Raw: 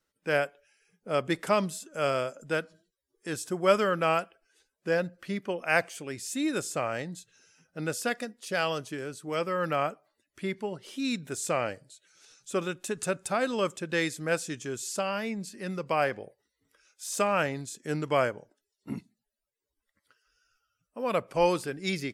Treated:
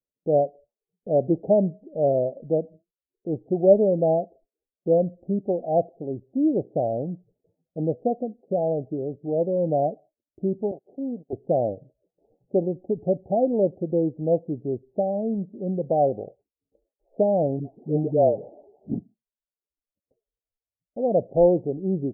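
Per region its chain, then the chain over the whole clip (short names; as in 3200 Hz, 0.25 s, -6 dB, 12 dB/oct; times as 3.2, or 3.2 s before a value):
10.71–11.33 minimum comb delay 0.46 ms + HPF 350 Hz + gate -51 dBFS, range -23 dB
17.59–18.94 switching spikes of -24.5 dBFS + dispersion highs, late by 0.142 s, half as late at 870 Hz
whole clip: gate with hold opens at -51 dBFS; steep low-pass 770 Hz 96 dB/oct; gain +8 dB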